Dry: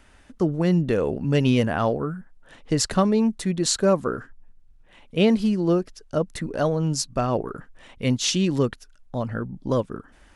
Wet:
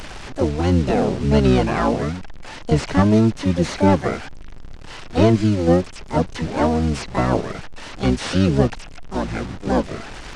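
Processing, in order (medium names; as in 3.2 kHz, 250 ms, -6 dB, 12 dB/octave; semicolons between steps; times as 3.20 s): one-bit delta coder 32 kbps, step -32.5 dBFS; harmony voices -12 st -1 dB, +7 st -3 dB; added noise brown -52 dBFS; trim +1 dB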